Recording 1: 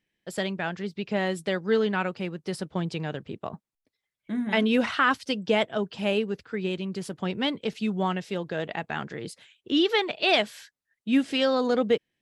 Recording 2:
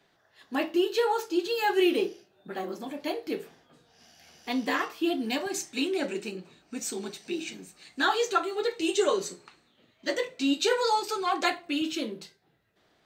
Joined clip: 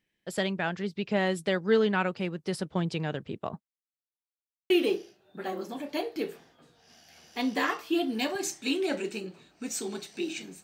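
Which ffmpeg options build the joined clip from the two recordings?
-filter_complex "[0:a]apad=whole_dur=10.63,atrim=end=10.63,asplit=2[s0][s1];[s0]atrim=end=4.12,asetpts=PTS-STARTPTS,afade=t=out:st=3.56:d=0.56:c=exp[s2];[s1]atrim=start=4.12:end=4.7,asetpts=PTS-STARTPTS,volume=0[s3];[1:a]atrim=start=1.81:end=7.74,asetpts=PTS-STARTPTS,afade=t=in:d=0.004:c=hsin[s4];[s2][s3][s4]concat=n=3:v=0:a=1"

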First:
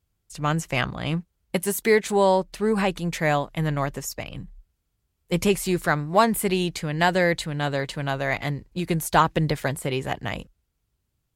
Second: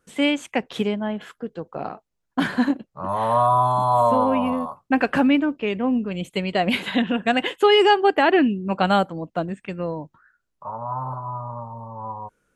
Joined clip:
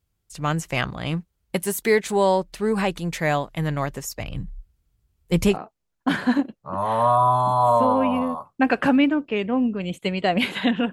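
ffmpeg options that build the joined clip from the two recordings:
-filter_complex "[0:a]asettb=1/sr,asplit=3[s0][s1][s2];[s0]atrim=end=4.204[s3];[s1]atrim=start=4.2:end=5.57,asetpts=PTS-STARTPTS,afade=t=in:d=0.004:c=qsin,afade=t=out:st=1.366:d=0.004:c=qsin,lowshelf=f=160:g=10[s4];[s2]atrim=start=5.566[s5];[s3][s4]acrossfade=d=0.004:c1=hsin:c2=qsin[s6];[s6][s5]acrossfade=d=0.004:c1=qsin:c2=hsin,apad=whole_dur=10.92,atrim=end=10.92,atrim=end=5.57,asetpts=PTS-STARTPTS[s7];[1:a]atrim=start=1.8:end=7.23,asetpts=PTS-STARTPTS[s8];[s7][s8]acrossfade=d=0.08:c1=tri:c2=tri"

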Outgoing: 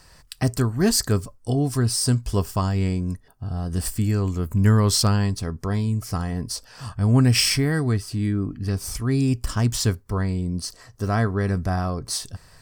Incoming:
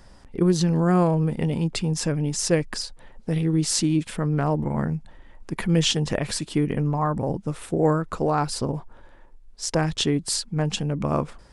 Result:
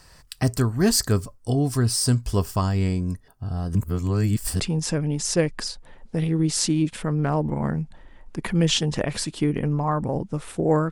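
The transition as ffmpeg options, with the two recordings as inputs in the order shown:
-filter_complex "[0:a]apad=whole_dur=10.91,atrim=end=10.91,asplit=2[s0][s1];[s0]atrim=end=3.752[s2];[s1]atrim=start=3.748:end=4.602,asetpts=PTS-STARTPTS,areverse[s3];[1:a]atrim=start=1.738:end=8.05[s4];[s2][s3]acrossfade=d=0.004:c1=hsin:c2=hsin[s5];[s5][s4]acrossfade=d=0.004:c1=hsin:c2=hsin"

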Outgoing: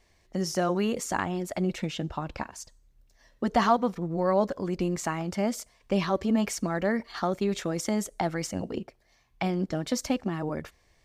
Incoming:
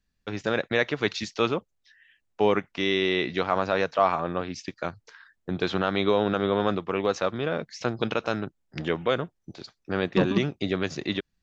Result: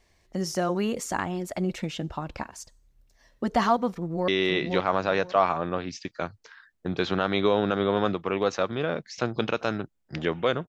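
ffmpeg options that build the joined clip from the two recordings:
-filter_complex "[0:a]apad=whole_dur=10.68,atrim=end=10.68,atrim=end=4.282[s0];[1:a]atrim=start=2.908:end=9.31[s1];[s0][s1]acrossfade=d=0.004:c1=hsin:c2=hsin,asplit=2[s2][s3];[s3]afade=t=in:st=3.91:d=0.01,afade=t=out:st=4.28:d=0.01,aecho=0:1:520|1040|1560:0.630957|0.126191|0.0252383[s4];[s2][s4]amix=inputs=2:normalize=0"

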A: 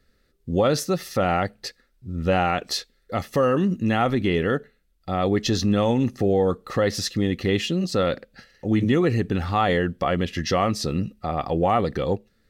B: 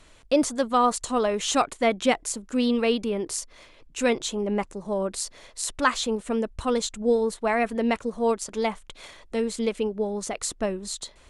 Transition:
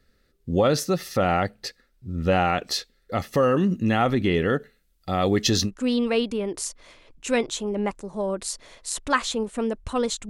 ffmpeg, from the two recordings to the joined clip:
-filter_complex "[0:a]asettb=1/sr,asplit=3[s0][s1][s2];[s0]atrim=end=4.604[s3];[s1]atrim=start=4.6:end=5.71,asetpts=PTS-STARTPTS,afade=t=in:d=0.004:c=qsin,afade=t=out:st=1.106:d=0.004:c=qsin,highshelf=f=3900:g=8[s4];[s2]atrim=start=5.706[s5];[s3][s4]acrossfade=d=0.004:c1=hsin:c2=qsin[s6];[s6][s5]acrossfade=d=0.004:c1=qsin:c2=hsin,apad=whole_dur=10.29,atrim=end=10.29,atrim=end=5.71,asetpts=PTS-STARTPTS[s7];[1:a]atrim=start=2.35:end=7.01,asetpts=PTS-STARTPTS[s8];[s7][s8]acrossfade=d=0.08:c1=tri:c2=tri"

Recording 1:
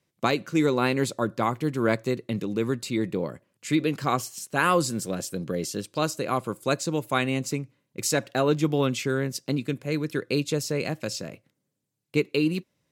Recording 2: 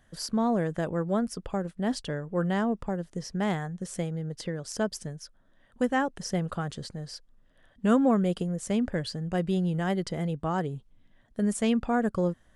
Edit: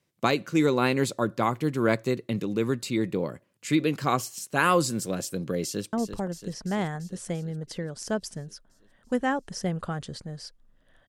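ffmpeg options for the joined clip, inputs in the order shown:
-filter_complex "[0:a]apad=whole_dur=11.08,atrim=end=11.08,atrim=end=5.932[s0];[1:a]atrim=start=2.618:end=7.77[s1];[s0][s1]acrossfade=d=0.004:c1=hsin:c2=hsin,asplit=2[s2][s3];[s3]afade=t=in:st=5.63:d=0.01,afade=t=out:st=5.93:d=0.01,aecho=0:1:340|680|1020|1360|1700|2040|2380|2720|3060|3400|3740:0.354813|0.248369|0.173859|0.121701|0.0851907|0.0596335|0.0417434|0.0292204|0.0204543|0.014318|0.0100226[s4];[s2][s4]amix=inputs=2:normalize=0"

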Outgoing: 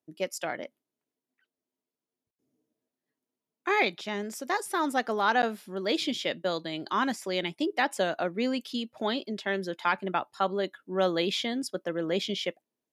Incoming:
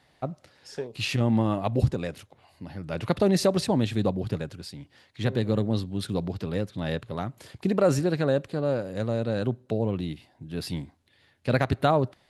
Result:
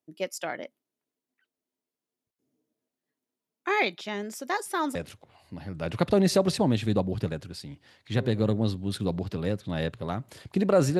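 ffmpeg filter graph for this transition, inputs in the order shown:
-filter_complex "[0:a]apad=whole_dur=10.99,atrim=end=10.99,atrim=end=4.952[s0];[1:a]atrim=start=2.038:end=8.08[s1];[s0][s1]acrossfade=d=0.004:c1=hsin:c2=hsin"

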